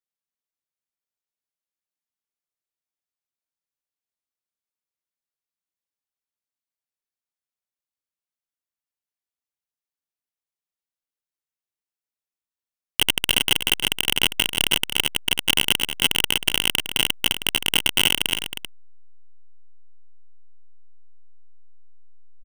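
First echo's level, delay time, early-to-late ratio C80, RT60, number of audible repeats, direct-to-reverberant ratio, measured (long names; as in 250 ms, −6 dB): −9.5 dB, 315 ms, no reverb audible, no reverb audible, 1, no reverb audible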